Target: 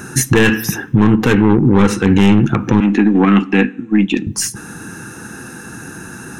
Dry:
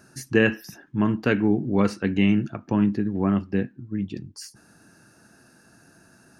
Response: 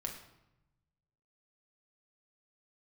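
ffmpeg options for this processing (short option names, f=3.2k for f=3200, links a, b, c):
-filter_complex "[0:a]asoftclip=type=tanh:threshold=-16.5dB,asplit=2[a][b];[1:a]atrim=start_sample=2205[c];[b][c]afir=irnorm=-1:irlink=0,volume=-17dB[d];[a][d]amix=inputs=2:normalize=0,acontrast=90,asettb=1/sr,asplit=3[e][f][g];[e]atrim=end=2.804[h];[f]atrim=start=2.8:end=4.27,asetpts=PTS-STARTPTS,afade=t=in:d=0.004:c=qsin,afade=t=out:st=1.466:d=0.004:c=qsin,highpass=f=250:w=0.5412,highpass=f=250:w=1.3066,equalizer=f=390:t=q:w=4:g=-9,equalizer=f=560:t=q:w=4:g=-9,equalizer=f=990:t=q:w=4:g=-5,equalizer=f=2.5k:t=q:w=4:g=6,equalizer=f=5.1k:t=q:w=4:g=-6,lowpass=f=8.4k:w=0.5412,lowpass=f=8.4k:w=1.3066[i];[g]atrim=start=4.266[j];[h][i]acrossfade=d=0.004:c1=hsin:c2=qsin[k];[k][j]acrossfade=d=0.004:c1=qsin:c2=hsin,aeval=exprs='0.376*(cos(1*acos(clip(val(0)/0.376,-1,1)))-cos(1*PI/2))+0.106*(cos(4*acos(clip(val(0)/0.376,-1,1)))-cos(4*PI/2))+0.0596*(cos(6*acos(clip(val(0)/0.376,-1,1)))-cos(6*PI/2))':c=same,superequalizer=8b=0.282:14b=0.631,acompressor=threshold=-18dB:ratio=6,bandreject=f=4.6k:w=5.3,alimiter=level_in=16.5dB:limit=-1dB:release=50:level=0:latency=1,volume=-1dB"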